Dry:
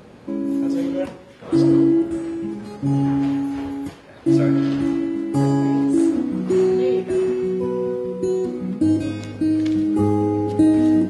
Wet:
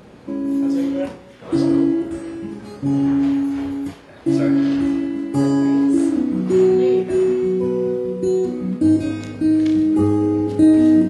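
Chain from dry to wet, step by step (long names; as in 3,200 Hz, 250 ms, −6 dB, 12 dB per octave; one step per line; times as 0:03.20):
double-tracking delay 32 ms −6 dB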